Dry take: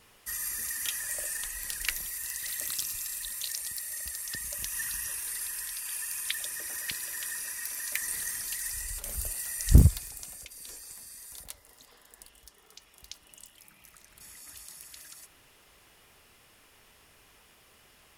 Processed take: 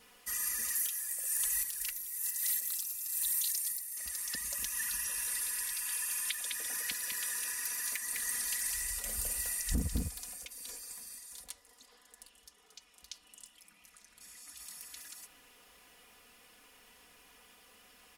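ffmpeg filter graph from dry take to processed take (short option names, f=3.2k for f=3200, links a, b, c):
-filter_complex "[0:a]asettb=1/sr,asplit=3[a][b][c];[a]atrim=end=0.754[d];[b]atrim=start=0.75:end=3.97,asetpts=PTS-STARTPTS,afade=t=in:d=0.004:c=qsin,afade=t=out:st=3.216:d=0.004:c=qsin,aemphasis=mode=production:type=50kf,tremolo=f=1.1:d=0.7[e];[c]atrim=start=3.966[f];[d][e]acrossfade=d=0.004:c1=hsin:c2=qsin[g];[g][f]acrossfade=d=0.004:c1=qsin:c2=hsin,asettb=1/sr,asplit=3[h][i][j];[h]atrim=end=4.954[k];[i]atrim=start=4.95:end=10.32,asetpts=PTS-STARTPTS,afade=t=in:d=0.004:c=qsin,afade=t=out:st=5.366:d=0.004:c=qsin,equalizer=f=16k:w=1.6:g=-3,aecho=1:1:205:0.501,atrim=end_sample=236817[l];[j]atrim=start=10.316[m];[k][l]acrossfade=d=0.004:c1=hsin:c2=qsin[n];[n][m]acrossfade=d=0.004:c1=qsin:c2=hsin,asettb=1/sr,asplit=3[o][p][q];[o]atrim=end=11.184[r];[p]atrim=start=11.18:end=14.6,asetpts=PTS-STARTPTS,afade=t=in:d=0.004:c=qsin,afade=t=out:st=3.416:d=0.004:c=qsin,highshelf=f=5.4k:g=10,adynamicsmooth=sensitivity=6.5:basefreq=7.9k,flanger=delay=0.9:depth=9:regen=-85:speed=1.2:shape=sinusoidal[s];[q]atrim=start=14.596[t];[r][s]acrossfade=d=0.004:c1=hsin:c2=qsin[u];[u][t]acrossfade=d=0.004:c1=qsin:c2=hsin,lowshelf=f=110:g=-8,aecho=1:1:4.1:0.75,alimiter=limit=-19dB:level=0:latency=1:release=427,volume=-2.5dB"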